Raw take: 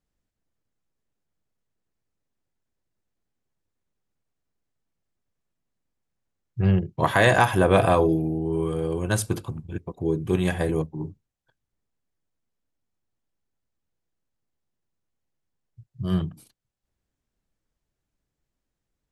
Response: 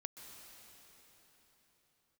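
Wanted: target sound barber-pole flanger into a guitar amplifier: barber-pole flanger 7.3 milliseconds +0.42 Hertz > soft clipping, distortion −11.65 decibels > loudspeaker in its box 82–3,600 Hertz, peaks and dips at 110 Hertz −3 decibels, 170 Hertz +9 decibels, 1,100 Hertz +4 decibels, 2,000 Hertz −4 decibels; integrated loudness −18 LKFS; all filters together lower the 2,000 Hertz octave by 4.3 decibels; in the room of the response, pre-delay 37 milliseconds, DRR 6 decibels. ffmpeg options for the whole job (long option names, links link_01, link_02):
-filter_complex "[0:a]equalizer=frequency=2000:width_type=o:gain=-4.5,asplit=2[link_01][link_02];[1:a]atrim=start_sample=2205,adelay=37[link_03];[link_02][link_03]afir=irnorm=-1:irlink=0,volume=-2.5dB[link_04];[link_01][link_04]amix=inputs=2:normalize=0,asplit=2[link_05][link_06];[link_06]adelay=7.3,afreqshift=0.42[link_07];[link_05][link_07]amix=inputs=2:normalize=1,asoftclip=threshold=-21dB,highpass=82,equalizer=frequency=110:width_type=q:width=4:gain=-3,equalizer=frequency=170:width_type=q:width=4:gain=9,equalizer=frequency=1100:width_type=q:width=4:gain=4,equalizer=frequency=2000:width_type=q:width=4:gain=-4,lowpass=frequency=3600:width=0.5412,lowpass=frequency=3600:width=1.3066,volume=9dB"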